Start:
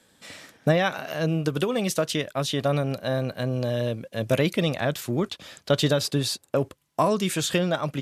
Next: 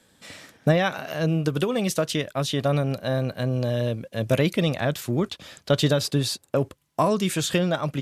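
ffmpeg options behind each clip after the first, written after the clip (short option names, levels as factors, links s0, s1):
-af "lowshelf=f=160:g=4.5"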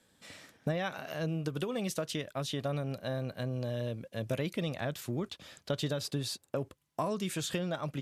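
-af "acompressor=threshold=0.0631:ratio=2,volume=0.398"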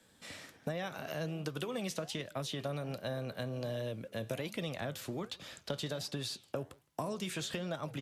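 -filter_complex "[0:a]acrossover=split=130|500|5800[s0][s1][s2][s3];[s0]acompressor=threshold=0.00224:ratio=4[s4];[s1]acompressor=threshold=0.00631:ratio=4[s5];[s2]acompressor=threshold=0.00794:ratio=4[s6];[s3]acompressor=threshold=0.00251:ratio=4[s7];[s4][s5][s6][s7]amix=inputs=4:normalize=0,asplit=2[s8][s9];[s9]adelay=163.3,volume=0.0447,highshelf=f=4000:g=-3.67[s10];[s8][s10]amix=inputs=2:normalize=0,flanger=delay=5.9:depth=8.8:regen=-83:speed=1.3:shape=sinusoidal,volume=2.24"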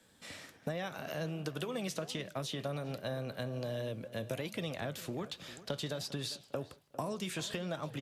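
-filter_complex "[0:a]asplit=2[s0][s1];[s1]adelay=401,lowpass=f=2300:p=1,volume=0.158,asplit=2[s2][s3];[s3]adelay=401,lowpass=f=2300:p=1,volume=0.28,asplit=2[s4][s5];[s5]adelay=401,lowpass=f=2300:p=1,volume=0.28[s6];[s0][s2][s4][s6]amix=inputs=4:normalize=0"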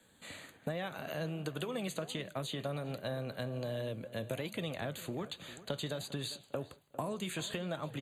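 -af "asuperstop=centerf=5400:order=12:qfactor=3.5"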